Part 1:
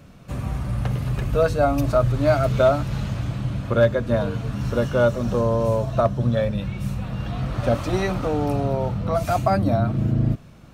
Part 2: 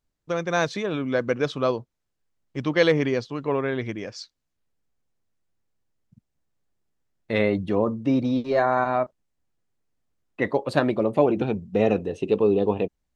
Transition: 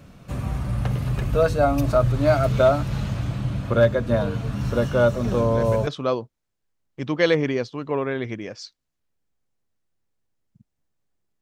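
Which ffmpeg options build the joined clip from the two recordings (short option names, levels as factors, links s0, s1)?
-filter_complex "[1:a]asplit=2[s0][s1];[0:a]apad=whole_dur=11.41,atrim=end=11.41,atrim=end=5.872[s2];[s1]atrim=start=1.438:end=6.98[s3];[s0]atrim=start=0.81:end=1.44,asetpts=PTS-STARTPTS,volume=0.376,afade=t=in:d=0.004:c=hsin,afade=t=out:st=0.626:d=0.004:c=hsin,adelay=5240[s4];[s2][s3]acrossfade=d=0.004:c1=hsin:c2=hsin[s5];[s5][s4]amix=inputs=2:normalize=0"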